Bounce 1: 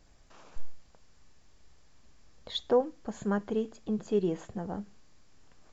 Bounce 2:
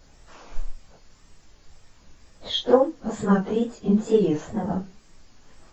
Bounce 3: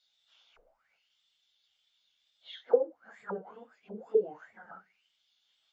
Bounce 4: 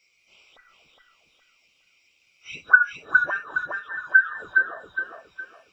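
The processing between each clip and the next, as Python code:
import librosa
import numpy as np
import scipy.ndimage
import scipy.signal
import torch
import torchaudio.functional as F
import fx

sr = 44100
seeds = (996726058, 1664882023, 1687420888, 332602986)

y1 = fx.phase_scramble(x, sr, seeds[0], window_ms=100)
y1 = fx.wow_flutter(y1, sr, seeds[1], rate_hz=2.1, depth_cents=110.0)
y1 = y1 * librosa.db_to_amplitude(9.0)
y2 = y1 + 0.31 * np.pad(y1, (int(1.4 * sr / 1000.0), 0))[:len(y1)]
y2 = fx.auto_wah(y2, sr, base_hz=450.0, top_hz=3800.0, q=9.9, full_db=-15.5, direction='down')
y3 = fx.band_invert(y2, sr, width_hz=2000)
y3 = fx.echo_feedback(y3, sr, ms=413, feedback_pct=36, wet_db=-3.5)
y3 = y3 * librosa.db_to_amplitude(9.0)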